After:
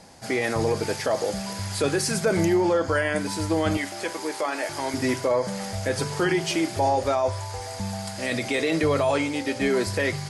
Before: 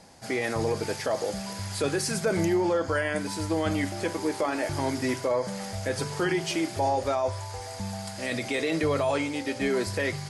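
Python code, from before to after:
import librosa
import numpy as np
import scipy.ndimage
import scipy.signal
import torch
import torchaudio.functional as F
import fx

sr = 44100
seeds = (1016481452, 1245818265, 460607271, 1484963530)

y = fx.highpass(x, sr, hz=650.0, slope=6, at=(3.77, 4.94))
y = F.gain(torch.from_numpy(y), 3.5).numpy()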